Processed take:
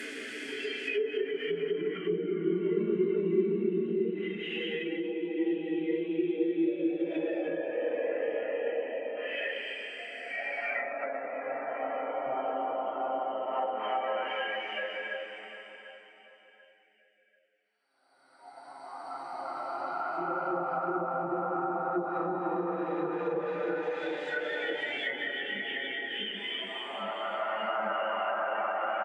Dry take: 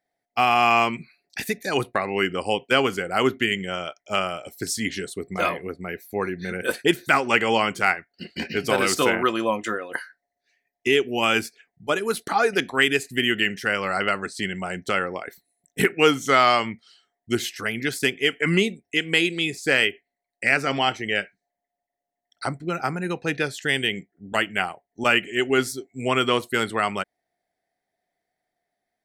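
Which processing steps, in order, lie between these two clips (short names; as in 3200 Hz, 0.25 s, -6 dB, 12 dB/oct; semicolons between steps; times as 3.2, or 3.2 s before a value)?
Paulstretch 4.3×, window 1.00 s, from 17.83; spectral noise reduction 13 dB; on a send: feedback echo 0.74 s, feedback 38%, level -15.5 dB; on the sum: treble ducked by the level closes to 610 Hz, closed at -23 dBFS; HPF 250 Hz 24 dB/oct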